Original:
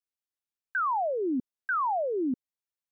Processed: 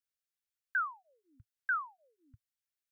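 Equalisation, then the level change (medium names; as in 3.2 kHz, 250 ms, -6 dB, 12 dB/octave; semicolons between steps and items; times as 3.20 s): elliptic band-stop 110–1400 Hz, stop band 40 dB; dynamic bell 670 Hz, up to -7 dB, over -49 dBFS, Q 1.1; 0.0 dB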